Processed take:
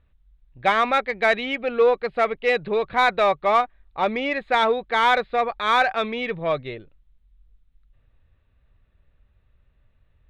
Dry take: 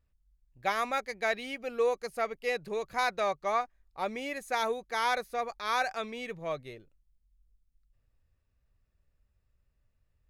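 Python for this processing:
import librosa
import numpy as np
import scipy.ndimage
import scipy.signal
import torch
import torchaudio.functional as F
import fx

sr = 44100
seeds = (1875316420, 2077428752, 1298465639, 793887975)

p1 = scipy.signal.sosfilt(scipy.signal.ellip(4, 1.0, 40, 3800.0, 'lowpass', fs=sr, output='sos'), x)
p2 = 10.0 ** (-30.0 / 20.0) * np.tanh(p1 / 10.0 ** (-30.0 / 20.0))
p3 = p1 + (p2 * librosa.db_to_amplitude(-3.5))
y = p3 * librosa.db_to_amplitude(8.5)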